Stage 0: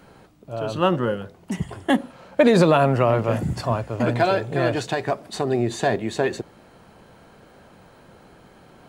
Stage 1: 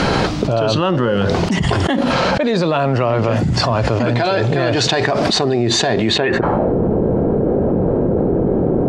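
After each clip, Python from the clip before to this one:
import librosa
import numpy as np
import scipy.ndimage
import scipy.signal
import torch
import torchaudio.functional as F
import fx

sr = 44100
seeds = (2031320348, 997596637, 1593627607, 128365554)

y = fx.filter_sweep_lowpass(x, sr, from_hz=5100.0, to_hz=420.0, start_s=6.07, end_s=6.73, q=1.8)
y = fx.env_flatten(y, sr, amount_pct=100)
y = y * librosa.db_to_amplitude(-4.5)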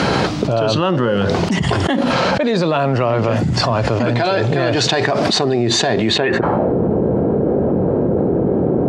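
y = scipy.signal.sosfilt(scipy.signal.butter(2, 77.0, 'highpass', fs=sr, output='sos'), x)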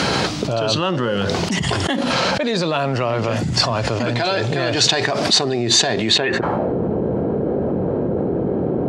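y = fx.high_shelf(x, sr, hz=2600.0, db=10.0)
y = y * librosa.db_to_amplitude(-4.5)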